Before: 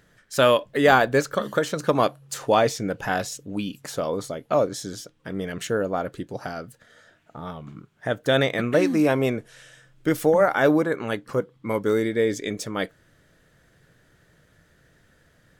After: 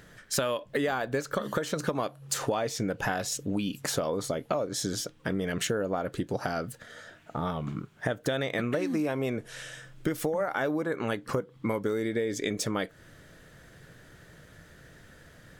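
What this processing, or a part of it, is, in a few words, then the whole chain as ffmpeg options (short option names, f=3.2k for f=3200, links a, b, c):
serial compression, leveller first: -af "acompressor=threshold=-24dB:ratio=2,acompressor=threshold=-33dB:ratio=6,volume=6.5dB"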